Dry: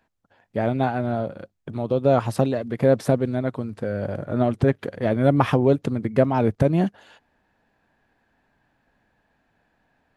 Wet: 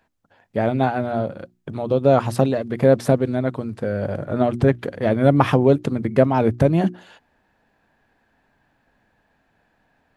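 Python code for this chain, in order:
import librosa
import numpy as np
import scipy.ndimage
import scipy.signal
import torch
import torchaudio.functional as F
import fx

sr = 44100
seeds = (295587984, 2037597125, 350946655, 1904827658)

y = fx.hum_notches(x, sr, base_hz=60, count=6)
y = F.gain(torch.from_numpy(y), 3.0).numpy()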